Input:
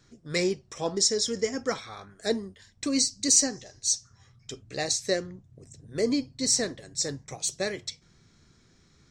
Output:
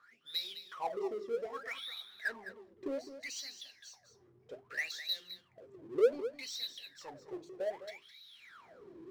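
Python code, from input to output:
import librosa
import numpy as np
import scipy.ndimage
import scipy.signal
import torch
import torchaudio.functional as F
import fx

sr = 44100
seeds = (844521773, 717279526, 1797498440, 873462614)

p1 = fx.recorder_agc(x, sr, target_db=-13.0, rise_db_per_s=10.0, max_gain_db=30)
p2 = scipy.signal.sosfilt(scipy.signal.butter(2, 5500.0, 'lowpass', fs=sr, output='sos'), p1)
p3 = fx.hum_notches(p2, sr, base_hz=50, count=8)
p4 = fx.wah_lfo(p3, sr, hz=0.64, low_hz=340.0, high_hz=3900.0, q=22.0)
p5 = fx.power_curve(p4, sr, exponent=0.7)
y = p5 + fx.echo_single(p5, sr, ms=209, db=-12.0, dry=0)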